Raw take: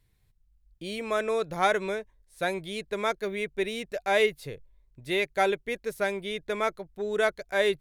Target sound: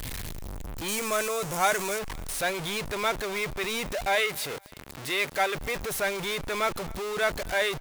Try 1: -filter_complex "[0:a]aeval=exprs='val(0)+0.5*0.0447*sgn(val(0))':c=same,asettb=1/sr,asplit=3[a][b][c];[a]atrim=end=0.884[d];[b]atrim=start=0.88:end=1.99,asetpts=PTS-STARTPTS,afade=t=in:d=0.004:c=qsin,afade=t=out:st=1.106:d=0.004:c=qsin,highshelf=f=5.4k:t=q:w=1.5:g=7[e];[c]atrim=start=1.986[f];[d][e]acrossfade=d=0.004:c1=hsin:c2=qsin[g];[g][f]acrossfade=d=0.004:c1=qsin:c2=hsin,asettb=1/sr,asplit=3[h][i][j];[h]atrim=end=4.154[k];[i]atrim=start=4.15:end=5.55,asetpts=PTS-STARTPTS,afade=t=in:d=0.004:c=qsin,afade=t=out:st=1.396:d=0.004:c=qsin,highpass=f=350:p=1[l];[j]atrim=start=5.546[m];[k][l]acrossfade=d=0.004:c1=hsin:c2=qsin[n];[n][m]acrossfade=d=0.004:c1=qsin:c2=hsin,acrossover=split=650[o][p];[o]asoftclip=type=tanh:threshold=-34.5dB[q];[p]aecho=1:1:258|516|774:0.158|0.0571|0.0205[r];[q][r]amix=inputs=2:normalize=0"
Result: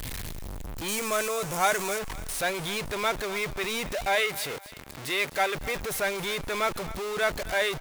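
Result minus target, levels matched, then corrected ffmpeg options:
echo-to-direct +8 dB
-filter_complex "[0:a]aeval=exprs='val(0)+0.5*0.0447*sgn(val(0))':c=same,asettb=1/sr,asplit=3[a][b][c];[a]atrim=end=0.884[d];[b]atrim=start=0.88:end=1.99,asetpts=PTS-STARTPTS,afade=t=in:d=0.004:c=qsin,afade=t=out:st=1.106:d=0.004:c=qsin,highshelf=f=5.4k:t=q:w=1.5:g=7[e];[c]atrim=start=1.986[f];[d][e]acrossfade=d=0.004:c1=hsin:c2=qsin[g];[g][f]acrossfade=d=0.004:c1=qsin:c2=hsin,asettb=1/sr,asplit=3[h][i][j];[h]atrim=end=4.154[k];[i]atrim=start=4.15:end=5.55,asetpts=PTS-STARTPTS,afade=t=in:d=0.004:c=qsin,afade=t=out:st=1.396:d=0.004:c=qsin,highpass=f=350:p=1[l];[j]atrim=start=5.546[m];[k][l]acrossfade=d=0.004:c1=hsin:c2=qsin[n];[n][m]acrossfade=d=0.004:c1=qsin:c2=hsin,acrossover=split=650[o][p];[o]asoftclip=type=tanh:threshold=-34.5dB[q];[p]aecho=1:1:258|516:0.0631|0.0227[r];[q][r]amix=inputs=2:normalize=0"

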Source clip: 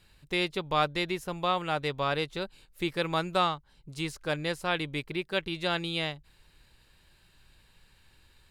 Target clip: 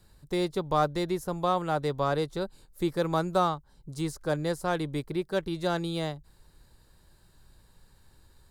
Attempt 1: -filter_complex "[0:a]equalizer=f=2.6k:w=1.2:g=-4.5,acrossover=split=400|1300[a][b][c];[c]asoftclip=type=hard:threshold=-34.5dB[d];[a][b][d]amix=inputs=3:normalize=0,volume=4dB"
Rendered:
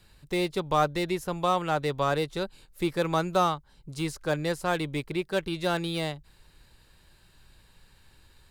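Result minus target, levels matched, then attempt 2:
2000 Hz band +3.5 dB
-filter_complex "[0:a]equalizer=f=2.6k:w=1.2:g=-16,acrossover=split=400|1300[a][b][c];[c]asoftclip=type=hard:threshold=-34.5dB[d];[a][b][d]amix=inputs=3:normalize=0,volume=4dB"

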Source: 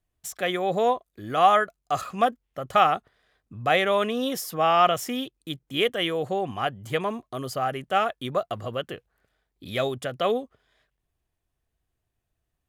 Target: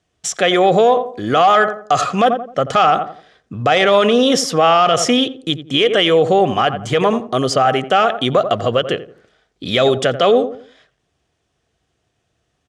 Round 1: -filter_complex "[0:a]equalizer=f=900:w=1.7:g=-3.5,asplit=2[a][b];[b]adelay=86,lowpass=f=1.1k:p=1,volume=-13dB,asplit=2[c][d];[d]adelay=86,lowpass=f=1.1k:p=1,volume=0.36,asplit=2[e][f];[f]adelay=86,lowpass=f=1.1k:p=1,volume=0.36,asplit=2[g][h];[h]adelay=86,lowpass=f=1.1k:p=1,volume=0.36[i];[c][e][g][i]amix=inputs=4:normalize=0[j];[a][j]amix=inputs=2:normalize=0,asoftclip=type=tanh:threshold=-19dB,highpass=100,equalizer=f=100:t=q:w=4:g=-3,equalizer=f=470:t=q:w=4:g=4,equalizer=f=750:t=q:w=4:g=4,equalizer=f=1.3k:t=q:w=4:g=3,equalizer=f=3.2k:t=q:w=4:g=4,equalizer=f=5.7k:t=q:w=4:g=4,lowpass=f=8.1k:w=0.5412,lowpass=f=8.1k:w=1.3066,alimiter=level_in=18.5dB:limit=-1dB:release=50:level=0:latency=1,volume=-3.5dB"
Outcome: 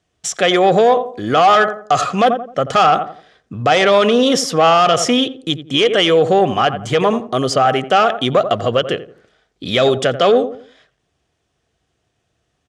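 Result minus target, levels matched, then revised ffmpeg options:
soft clip: distortion +8 dB
-filter_complex "[0:a]equalizer=f=900:w=1.7:g=-3.5,asplit=2[a][b];[b]adelay=86,lowpass=f=1.1k:p=1,volume=-13dB,asplit=2[c][d];[d]adelay=86,lowpass=f=1.1k:p=1,volume=0.36,asplit=2[e][f];[f]adelay=86,lowpass=f=1.1k:p=1,volume=0.36,asplit=2[g][h];[h]adelay=86,lowpass=f=1.1k:p=1,volume=0.36[i];[c][e][g][i]amix=inputs=4:normalize=0[j];[a][j]amix=inputs=2:normalize=0,asoftclip=type=tanh:threshold=-12.5dB,highpass=100,equalizer=f=100:t=q:w=4:g=-3,equalizer=f=470:t=q:w=4:g=4,equalizer=f=750:t=q:w=4:g=4,equalizer=f=1.3k:t=q:w=4:g=3,equalizer=f=3.2k:t=q:w=4:g=4,equalizer=f=5.7k:t=q:w=4:g=4,lowpass=f=8.1k:w=0.5412,lowpass=f=8.1k:w=1.3066,alimiter=level_in=18.5dB:limit=-1dB:release=50:level=0:latency=1,volume=-3.5dB"

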